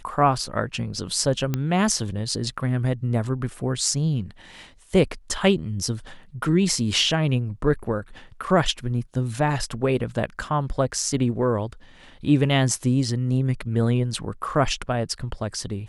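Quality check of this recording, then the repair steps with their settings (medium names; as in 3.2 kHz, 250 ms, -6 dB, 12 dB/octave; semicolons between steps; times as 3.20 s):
1.54 s: pop -11 dBFS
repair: de-click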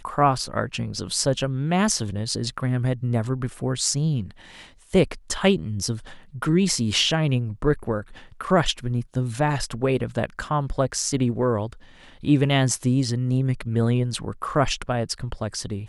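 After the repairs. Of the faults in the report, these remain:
1.54 s: pop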